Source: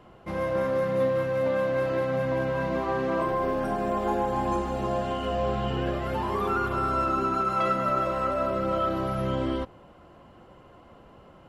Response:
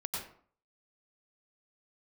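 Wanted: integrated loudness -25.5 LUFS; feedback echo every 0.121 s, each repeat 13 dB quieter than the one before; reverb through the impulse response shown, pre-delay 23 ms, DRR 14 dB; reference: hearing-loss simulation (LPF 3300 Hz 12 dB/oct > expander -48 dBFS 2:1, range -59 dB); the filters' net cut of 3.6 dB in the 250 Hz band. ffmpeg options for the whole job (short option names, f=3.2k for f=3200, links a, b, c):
-filter_complex "[0:a]equalizer=f=250:t=o:g=-5,aecho=1:1:121|242|363:0.224|0.0493|0.0108,asplit=2[a][b];[1:a]atrim=start_sample=2205,adelay=23[c];[b][c]afir=irnorm=-1:irlink=0,volume=-16.5dB[d];[a][d]amix=inputs=2:normalize=0,lowpass=3.3k,agate=range=-59dB:threshold=-48dB:ratio=2,volume=2dB"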